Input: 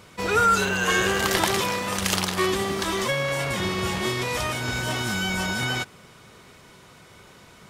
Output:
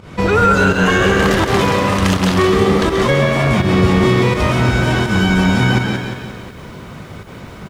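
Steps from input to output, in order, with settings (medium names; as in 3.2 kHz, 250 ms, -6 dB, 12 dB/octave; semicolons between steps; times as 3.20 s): on a send: frequency-shifting echo 134 ms, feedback 34%, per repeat +84 Hz, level -7 dB; on the sum: volume shaper 83 bpm, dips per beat 1, -14 dB, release 136 ms; low-pass 2.4 kHz 6 dB/octave; in parallel at +1 dB: compression, threshold -34 dBFS, peak gain reduction 16.5 dB; on the sum: bass shelf 270 Hz +9.5 dB; loudness maximiser +9 dB; bit-crushed delay 176 ms, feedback 55%, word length 7-bit, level -8.5 dB; trim -3 dB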